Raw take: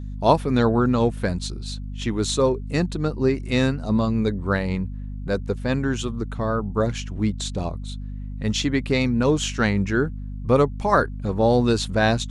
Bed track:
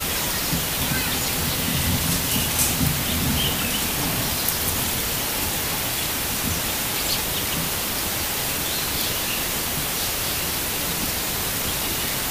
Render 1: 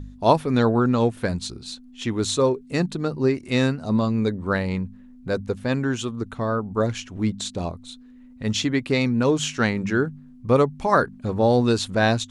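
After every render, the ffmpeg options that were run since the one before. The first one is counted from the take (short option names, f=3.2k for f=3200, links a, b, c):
-af "bandreject=f=50:t=h:w=4,bandreject=f=100:t=h:w=4,bandreject=f=150:t=h:w=4,bandreject=f=200:t=h:w=4"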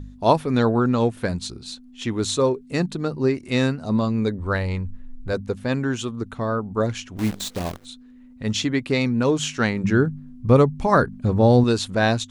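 -filter_complex "[0:a]asplit=3[a][b][c];[a]afade=t=out:st=4.38:d=0.02[d];[b]asubboost=boost=11:cutoff=54,afade=t=in:st=4.38:d=0.02,afade=t=out:st=5.32:d=0.02[e];[c]afade=t=in:st=5.32:d=0.02[f];[d][e][f]amix=inputs=3:normalize=0,asplit=3[g][h][i];[g]afade=t=out:st=7.17:d=0.02[j];[h]acrusher=bits=6:dc=4:mix=0:aa=0.000001,afade=t=in:st=7.17:d=0.02,afade=t=out:st=7.84:d=0.02[k];[i]afade=t=in:st=7.84:d=0.02[l];[j][k][l]amix=inputs=3:normalize=0,asettb=1/sr,asplit=3[m][n][o];[m]atrim=end=9.844[p];[n]atrim=start=9.84:end=11.64,asetpts=PTS-STARTPTS,afade=t=in:d=0.004:c=qsin,afade=t=out:st=1.796:d=0.004:c=qsin,lowshelf=f=220:g=9.5[q];[o]atrim=start=11.636[r];[p][q]acrossfade=d=0.004:c1=hsin:c2=qsin[s];[s][r]acrossfade=d=0.004:c1=qsin:c2=hsin"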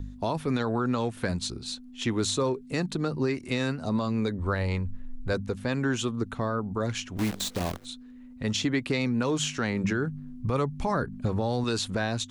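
-filter_complex "[0:a]acrossover=split=360|840[a][b][c];[a]acompressor=threshold=-26dB:ratio=4[d];[b]acompressor=threshold=-31dB:ratio=4[e];[c]acompressor=threshold=-27dB:ratio=4[f];[d][e][f]amix=inputs=3:normalize=0,alimiter=limit=-17dB:level=0:latency=1"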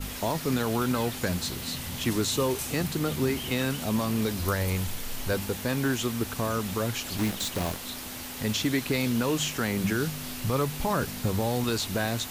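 -filter_complex "[1:a]volume=-14dB[a];[0:a][a]amix=inputs=2:normalize=0"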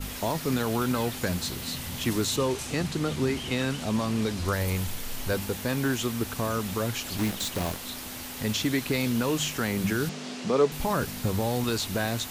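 -filter_complex "[0:a]asettb=1/sr,asplit=3[a][b][c];[a]atrim=end=2.364[d];[b]atrim=start=2.36:end=4.53,asetpts=PTS-STARTPTS,afade=t=in:d=0.004:c=qsin,afade=t=out:st=2.166:d=0.004:c=qsin,lowpass=8.6k[e];[c]atrim=start=4.526[f];[d][e]acrossfade=d=0.004:c1=hsin:c2=qsin[g];[g][f]acrossfade=d=0.004:c1=qsin:c2=hsin,asettb=1/sr,asplit=3[h][i][j];[h]atrim=end=10.094[k];[i]atrim=start=10.09:end=10.72,asetpts=PTS-STARTPTS,afade=t=in:d=0.004:c=qsin,afade=t=out:st=0.626:d=0.004:c=qsin,highpass=f=180:w=0.5412,highpass=f=180:w=1.3066,equalizer=f=200:t=q:w=4:g=9,equalizer=f=430:t=q:w=4:g=9,equalizer=f=680:t=q:w=4:g=5,lowpass=f=7.2k:w=0.5412,lowpass=f=7.2k:w=1.3066[l];[j]atrim=start=10.716[m];[k][l]acrossfade=d=0.004:c1=hsin:c2=qsin[n];[n][m]acrossfade=d=0.004:c1=qsin:c2=hsin"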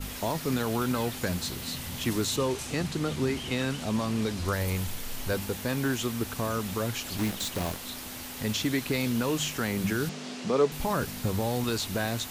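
-af "volume=-1.5dB"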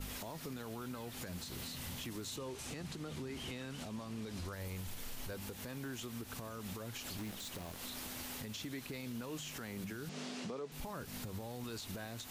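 -af "acompressor=threshold=-34dB:ratio=6,alimiter=level_in=10.5dB:limit=-24dB:level=0:latency=1:release=246,volume=-10.5dB"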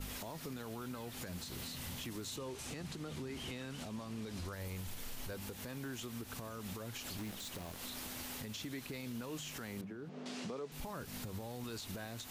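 -filter_complex "[0:a]asettb=1/sr,asplit=3[a][b][c];[a]atrim=end=9.814[d];[b]atrim=start=9.81:end=10.26,asetpts=PTS-STARTPTS,afade=t=in:d=0.004:c=qsin,afade=t=out:st=0.446:d=0.004:c=qsin,bandpass=f=390:t=q:w=0.59[e];[c]atrim=start=10.256[f];[d][e]acrossfade=d=0.004:c1=hsin:c2=qsin[g];[g][f]acrossfade=d=0.004:c1=qsin:c2=hsin"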